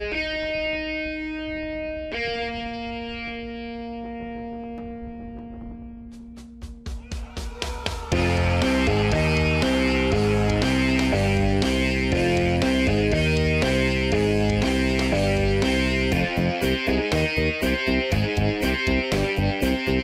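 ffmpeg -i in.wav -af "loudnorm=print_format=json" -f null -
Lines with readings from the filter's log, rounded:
"input_i" : "-22.8",
"input_tp" : "-6.4",
"input_lra" : "12.9",
"input_thresh" : "-33.5",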